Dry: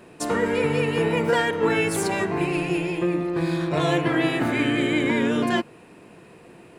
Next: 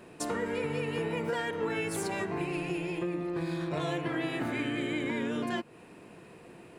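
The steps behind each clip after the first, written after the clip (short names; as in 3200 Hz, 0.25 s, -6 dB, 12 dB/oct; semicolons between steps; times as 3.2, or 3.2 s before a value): compressor 2.5:1, threshold -29 dBFS, peak gain reduction 9 dB; gain -3.5 dB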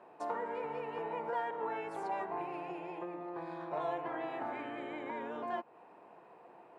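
band-pass 830 Hz, Q 2.7; gain +4 dB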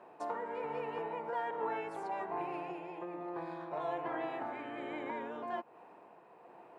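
tremolo 1.2 Hz, depth 32%; gain +1.5 dB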